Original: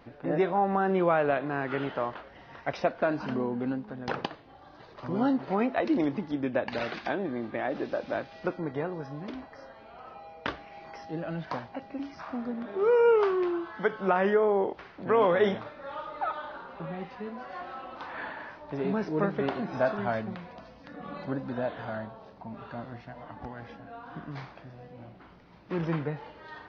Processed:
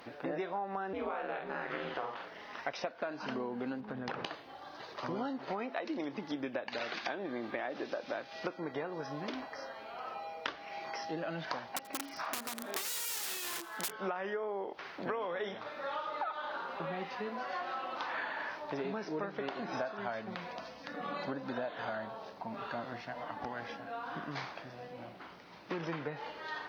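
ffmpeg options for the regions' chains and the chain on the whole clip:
ffmpeg -i in.wav -filter_complex "[0:a]asettb=1/sr,asplit=3[link_01][link_02][link_03];[link_01]atrim=end=0.934[link_04];[link_02]atrim=start=0.93:end=2.59,asetpts=PTS-STARTPTS,afade=type=in:duration=0.004:curve=qsin,afade=type=out:start_time=1.656:duration=0.004:curve=qsin,aeval=exprs='val(0)*sin(2*PI*110*n/s)':channel_layout=same,asplit=2[link_05][link_06];[link_06]adelay=47,volume=-4.5dB[link_07];[link_05][link_07]amix=inputs=2:normalize=0,atrim=end_sample=73206[link_08];[link_03]atrim=start=2.586[link_09];[link_04][link_08]acrossfade=duration=0.004:curve1=hsin:curve2=qsin[link_10];[link_10][link_09]acrossfade=duration=0.004:curve1=qsin:curve2=hsin,asettb=1/sr,asplit=3[link_11][link_12][link_13];[link_11]atrim=end=3.804[link_14];[link_12]atrim=start=3.8:end=4.26,asetpts=PTS-STARTPTS,afade=type=in:duration=0.004:curve=qsin,afade=type=out:start_time=0.456:duration=0.004:curve=qsin,bass=frequency=250:gain=7,treble=frequency=4000:gain=-10,acompressor=threshold=-33dB:ratio=6:attack=3.2:release=140:knee=1:detection=peak[link_15];[link_13]atrim=start=4.256[link_16];[link_14][link_15]acrossfade=duration=0.004:curve1=hsin:curve2=qsin[link_17];[link_17][link_16]acrossfade=duration=0.004:curve1=qsin:curve2=hsin,asettb=1/sr,asplit=3[link_18][link_19][link_20];[link_18]atrim=end=11.714[link_21];[link_19]atrim=start=11.71:end=13.92,asetpts=PTS-STARTPTS,afade=type=in:duration=0.004:curve=qsin,afade=type=out:start_time=2.206:duration=0.004:curve=qsin,lowshelf=frequency=150:gain=-4.5,aeval=exprs='(mod(29.9*val(0)+1,2)-1)/29.9':channel_layout=same,aecho=1:1:83|166|249:0.0841|0.0412|0.0202,atrim=end_sample=97461[link_22];[link_20]atrim=start=13.916[link_23];[link_21][link_22]acrossfade=duration=0.004:curve1=hsin:curve2=qsin[link_24];[link_24][link_23]acrossfade=duration=0.004:curve1=qsin:curve2=hsin,highpass=frequency=460:poles=1,aemphasis=mode=production:type=cd,acompressor=threshold=-39dB:ratio=10,volume=5dB" out.wav

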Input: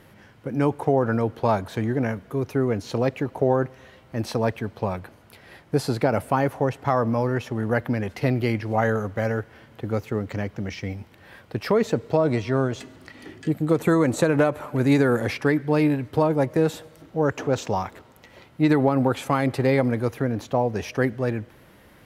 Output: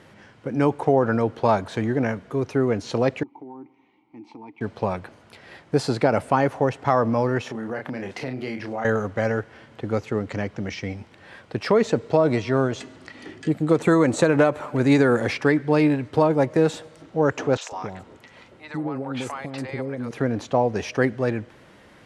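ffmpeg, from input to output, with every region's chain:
ffmpeg -i in.wav -filter_complex "[0:a]asettb=1/sr,asplit=3[link_01][link_02][link_03];[link_01]atrim=end=3.234[link_04];[link_02]atrim=start=3.23:end=4.61,asetpts=PTS-STARTPTS,afade=type=in:duration=0.004:curve=qsin,afade=type=out:start_time=1.376:duration=0.004:curve=qsin,asplit=3[link_05][link_06][link_07];[link_05]bandpass=frequency=300:width_type=q:width=8,volume=0dB[link_08];[link_06]bandpass=frequency=870:width_type=q:width=8,volume=-6dB[link_09];[link_07]bandpass=frequency=2240:width_type=q:width=8,volume=-9dB[link_10];[link_08][link_09][link_10]amix=inputs=3:normalize=0,bandreject=frequency=2600:width=29,acompressor=threshold=-41dB:ratio=2.5:attack=3.2:release=140:knee=1:detection=peak[link_11];[link_03]atrim=start=4.606[link_12];[link_04][link_11]acrossfade=duration=0.004:curve1=hsin:curve2=qsin[link_13];[link_13][link_12]acrossfade=duration=0.004:curve1=qsin:curve2=hsin,asettb=1/sr,asplit=3[link_14][link_15][link_16];[link_14]atrim=end=7.424[link_17];[link_15]atrim=start=7.42:end=8.85,asetpts=PTS-STARTPTS,afade=type=in:duration=0.004:curve=qsin,afade=type=out:start_time=1.426:duration=0.004:curve=qsin,highpass=140,asplit=2[link_18][link_19];[link_19]adelay=31,volume=-5.5dB[link_20];[link_18][link_20]amix=inputs=2:normalize=0,atrim=end_sample=63063,acompressor=threshold=-30dB:ratio=3:attack=3.2:release=140:knee=1:detection=peak[link_21];[link_16]atrim=start=8.846[link_22];[link_17][link_21]acrossfade=duration=0.004:curve1=hsin:curve2=qsin[link_23];[link_23][link_22]acrossfade=duration=0.004:curve1=qsin:curve2=hsin,asettb=1/sr,asplit=3[link_24][link_25][link_26];[link_24]atrim=end=17.574[link_27];[link_25]atrim=start=17.57:end=20.11,asetpts=PTS-STARTPTS,afade=type=in:duration=0.004:curve=qsin,afade=type=out:start_time=2.536:duration=0.004:curve=qsin,acompressor=threshold=-30dB:ratio=2.5:attack=3.2:release=140:knee=1:detection=peak,acrossover=split=600|5100[link_28][link_29][link_30];[link_30]adelay=40[link_31];[link_28]adelay=150[link_32];[link_32][link_29][link_31]amix=inputs=3:normalize=0,atrim=end_sample=112014[link_33];[link_26]atrim=start=20.106[link_34];[link_27][link_33]acrossfade=duration=0.004:curve1=hsin:curve2=qsin[link_35];[link_35][link_34]acrossfade=duration=0.004:curve1=qsin:curve2=hsin,lowpass=frequency=8900:width=0.5412,lowpass=frequency=8900:width=1.3066,lowshelf=frequency=100:gain=-8.5,volume=2.5dB" out.wav

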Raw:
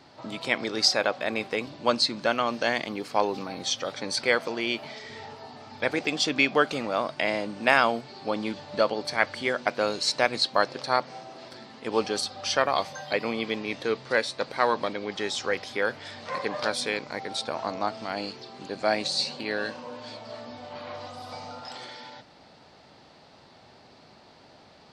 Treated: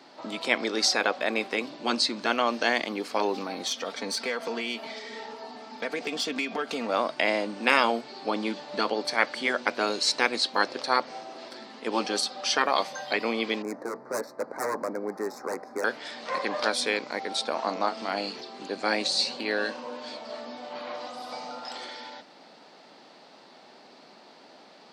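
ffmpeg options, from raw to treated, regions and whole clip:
ffmpeg -i in.wav -filter_complex "[0:a]asettb=1/sr,asplit=3[link_01][link_02][link_03];[link_01]atrim=end=3.664[link_04];[link_02]atrim=start=3.66:end=6.89,asetpts=PTS-STARTPTS,afade=type=in:duration=0.004:curve=qsin,afade=type=out:start_time=3.226:duration=0.004:curve=qsin,acompressor=threshold=-27dB:ratio=4:attack=3.2:release=140:knee=1:detection=peak,aeval=exprs='(tanh(12.6*val(0)+0.4)-tanh(0.4))/12.6':channel_layout=same,aecho=1:1:4.4:0.52,atrim=end_sample=142443[link_05];[link_03]atrim=start=6.886[link_06];[link_04][link_05]acrossfade=duration=0.004:curve1=hsin:curve2=qsin[link_07];[link_07][link_06]acrossfade=duration=0.004:curve1=qsin:curve2=hsin,asettb=1/sr,asplit=3[link_08][link_09][link_10];[link_08]atrim=end=13.624[link_11];[link_09]atrim=start=13.62:end=15.84,asetpts=PTS-STARTPTS,afade=type=in:duration=0.004:curve=qsin,afade=type=out:start_time=2.216:duration=0.004:curve=qsin,adynamicsmooth=sensitivity=2:basefreq=1900,aeval=exprs='0.075*(abs(mod(val(0)/0.075+3,4)-2)-1)':channel_layout=same,asuperstop=centerf=3100:order=4:qfactor=0.74[link_12];[link_10]atrim=start=15.836[link_13];[link_11][link_12]acrossfade=duration=0.004:curve1=hsin:curve2=qsin[link_14];[link_14][link_13]acrossfade=duration=0.004:curve1=qsin:curve2=hsin,asettb=1/sr,asplit=3[link_15][link_16][link_17];[link_15]atrim=end=17.524[link_18];[link_16]atrim=start=17.52:end=18.41,asetpts=PTS-STARTPTS,afade=type=in:duration=0.004:curve=qsin,afade=type=out:start_time=0.886:duration=0.004:curve=qsin,asplit=2[link_19][link_20];[link_20]adelay=31,volume=-10.5dB[link_21];[link_19][link_21]amix=inputs=2:normalize=0,atrim=end_sample=39249,acompressor=mode=upward:threshold=-34dB:ratio=2.5:attack=3.2:release=140:knee=2.83:detection=peak[link_22];[link_17]atrim=start=18.406[link_23];[link_18][link_22]acrossfade=duration=0.004:curve1=hsin:curve2=qsin[link_24];[link_24][link_23]acrossfade=duration=0.004:curve1=qsin:curve2=hsin,highpass=frequency=210:width=0.5412,highpass=frequency=210:width=1.3066,afftfilt=real='re*lt(hypot(re,im),0.398)':imag='im*lt(hypot(re,im),0.398)':win_size=1024:overlap=0.75,volume=2dB" out.wav

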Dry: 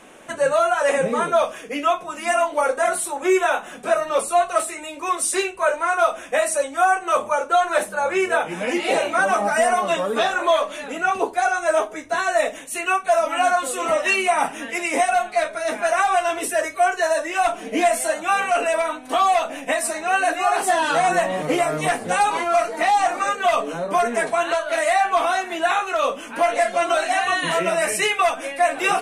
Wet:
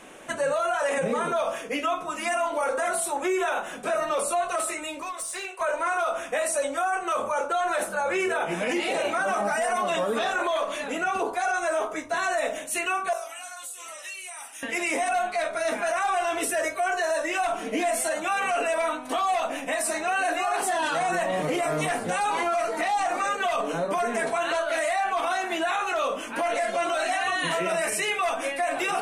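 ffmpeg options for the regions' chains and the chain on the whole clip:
ffmpeg -i in.wav -filter_complex "[0:a]asettb=1/sr,asplit=3[link_01][link_02][link_03];[link_01]atrim=end=5.024[link_04];[link_02]atrim=start=5.02:end=5.61,asetpts=PTS-STARTPTS,afade=type=in:duration=0.004:curve=qsin,afade=type=out:start_time=0.586:duration=0.004:curve=qsin,highpass=frequency=470:width=0.5412,highpass=frequency=470:width=1.3066,acompressor=threshold=-29dB:ratio=12:attack=3.2:release=140:knee=1:detection=peak,aeval=exprs='clip(val(0),-1,0.0355)':channel_layout=same[link_05];[link_03]atrim=start=5.606[link_06];[link_04][link_05]acrossfade=duration=0.004:curve1=hsin:curve2=qsin[link_07];[link_07][link_06]acrossfade=duration=0.004:curve1=qsin:curve2=hsin,asettb=1/sr,asplit=3[link_08][link_09][link_10];[link_08]atrim=end=13.134[link_11];[link_09]atrim=start=13.13:end=14.63,asetpts=PTS-STARTPTS,afade=type=in:duration=0.004:curve=qsin,afade=type=out:start_time=1.496:duration=0.004:curve=qsin,aderivative,acompressor=threshold=-36dB:ratio=4:attack=3.2:release=140:knee=1:detection=peak[link_12];[link_10]atrim=start=14.626[link_13];[link_11][link_12]acrossfade=duration=0.004:curve1=hsin:curve2=qsin[link_14];[link_14][link_13]acrossfade=duration=0.004:curve1=qsin:curve2=hsin,bandreject=frequency=47.79:width_type=h:width=4,bandreject=frequency=95.58:width_type=h:width=4,bandreject=frequency=143.37:width_type=h:width=4,bandreject=frequency=191.16:width_type=h:width=4,bandreject=frequency=238.95:width_type=h:width=4,bandreject=frequency=286.74:width_type=h:width=4,bandreject=frequency=334.53:width_type=h:width=4,bandreject=frequency=382.32:width_type=h:width=4,bandreject=frequency=430.11:width_type=h:width=4,bandreject=frequency=477.9:width_type=h:width=4,bandreject=frequency=525.69:width_type=h:width=4,bandreject=frequency=573.48:width_type=h:width=4,bandreject=frequency=621.27:width_type=h:width=4,bandreject=frequency=669.06:width_type=h:width=4,bandreject=frequency=716.85:width_type=h:width=4,bandreject=frequency=764.64:width_type=h:width=4,bandreject=frequency=812.43:width_type=h:width=4,bandreject=frequency=860.22:width_type=h:width=4,bandreject=frequency=908.01:width_type=h:width=4,bandreject=frequency=955.8:width_type=h:width=4,bandreject=frequency=1003.59:width_type=h:width=4,bandreject=frequency=1051.38:width_type=h:width=4,bandreject=frequency=1099.17:width_type=h:width=4,bandreject=frequency=1146.96:width_type=h:width=4,bandreject=frequency=1194.75:width_type=h:width=4,bandreject=frequency=1242.54:width_type=h:width=4,bandreject=frequency=1290.33:width_type=h:width=4,bandreject=frequency=1338.12:width_type=h:width=4,bandreject=frequency=1385.91:width_type=h:width=4,bandreject=frequency=1433.7:width_type=h:width=4,bandreject=frequency=1481.49:width_type=h:width=4,bandreject=frequency=1529.28:width_type=h:width=4,bandreject=frequency=1577.07:width_type=h:width=4,alimiter=limit=-18dB:level=0:latency=1:release=40" out.wav

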